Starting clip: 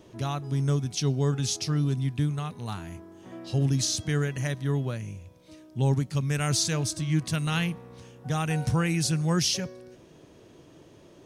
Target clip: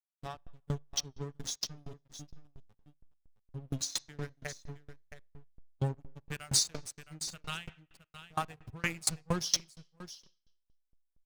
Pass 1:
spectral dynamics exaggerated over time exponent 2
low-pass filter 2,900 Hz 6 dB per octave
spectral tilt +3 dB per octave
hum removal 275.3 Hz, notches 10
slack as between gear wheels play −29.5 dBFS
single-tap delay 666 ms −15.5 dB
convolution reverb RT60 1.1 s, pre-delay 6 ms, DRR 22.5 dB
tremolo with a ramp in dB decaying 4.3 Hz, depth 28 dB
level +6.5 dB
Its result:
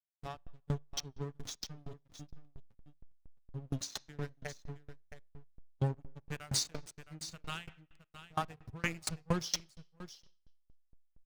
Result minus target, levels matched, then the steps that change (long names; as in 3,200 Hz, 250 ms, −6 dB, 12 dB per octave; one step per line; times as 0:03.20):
8,000 Hz band −3.0 dB
change: low-pass filter 7,800 Hz 6 dB per octave